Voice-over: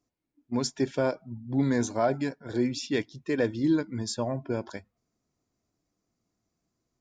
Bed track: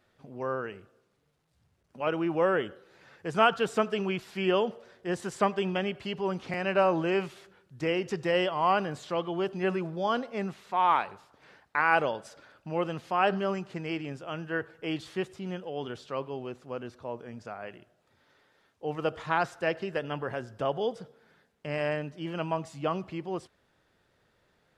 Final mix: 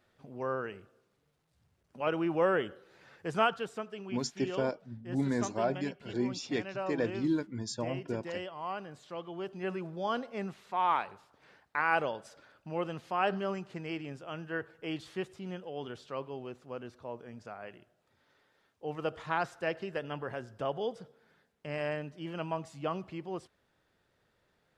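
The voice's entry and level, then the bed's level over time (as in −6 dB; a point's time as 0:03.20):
3.60 s, −5.5 dB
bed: 0:03.30 −2 dB
0:03.82 −13 dB
0:08.81 −13 dB
0:10.10 −4.5 dB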